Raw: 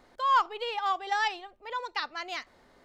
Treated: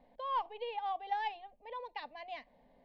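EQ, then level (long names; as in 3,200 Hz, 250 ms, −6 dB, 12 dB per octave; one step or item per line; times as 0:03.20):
high-frequency loss of the air 470 metres
phaser with its sweep stopped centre 360 Hz, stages 6
−1.0 dB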